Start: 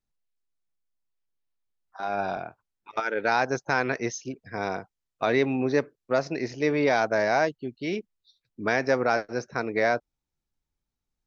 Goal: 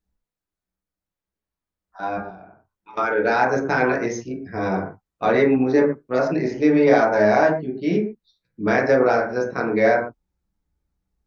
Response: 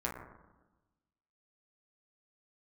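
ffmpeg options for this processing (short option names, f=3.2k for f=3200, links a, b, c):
-filter_complex "[0:a]lowshelf=f=470:g=6,asettb=1/sr,asplit=3[a][b][c];[a]atrim=end=2.174[d];[b]atrim=start=2.17:end=2.92,asetpts=PTS-STARTPTS,afade=t=in:d=0.004:c=qsin,afade=t=out:st=0.746:d=0.004:c=qsin,acompressor=threshold=-42dB:ratio=16[e];[c]atrim=start=2.916[f];[d][e]acrossfade=d=0.004:c1=hsin:c2=qsin[g];[g][f]acrossfade=d=0.004:c1=qsin:c2=hsin[h];[1:a]atrim=start_sample=2205,atrim=end_sample=6174[i];[h][i]afir=irnorm=-1:irlink=0"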